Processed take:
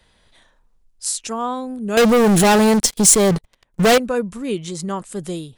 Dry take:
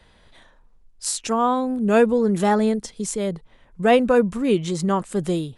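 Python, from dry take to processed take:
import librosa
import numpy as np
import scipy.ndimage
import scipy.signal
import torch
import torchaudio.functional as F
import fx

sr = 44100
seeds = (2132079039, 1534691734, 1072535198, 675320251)

y = fx.leveller(x, sr, passes=5, at=(1.97, 3.98))
y = fx.high_shelf(y, sr, hz=3800.0, db=8.5)
y = y * 10.0 ** (-4.5 / 20.0)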